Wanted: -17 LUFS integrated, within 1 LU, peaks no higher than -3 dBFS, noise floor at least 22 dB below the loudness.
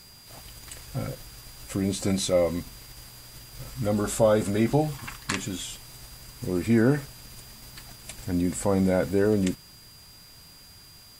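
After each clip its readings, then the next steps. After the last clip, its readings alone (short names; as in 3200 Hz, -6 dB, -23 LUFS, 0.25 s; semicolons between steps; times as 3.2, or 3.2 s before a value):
steady tone 4800 Hz; tone level -51 dBFS; loudness -26.0 LUFS; peak -8.0 dBFS; loudness target -17.0 LUFS
-> notch 4800 Hz, Q 30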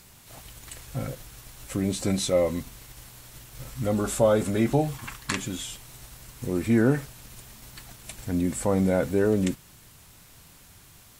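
steady tone none; loudness -26.0 LUFS; peak -8.0 dBFS; loudness target -17.0 LUFS
-> gain +9 dB; limiter -3 dBFS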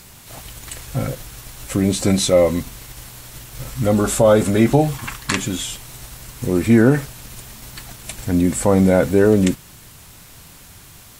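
loudness -17.5 LUFS; peak -3.0 dBFS; noise floor -43 dBFS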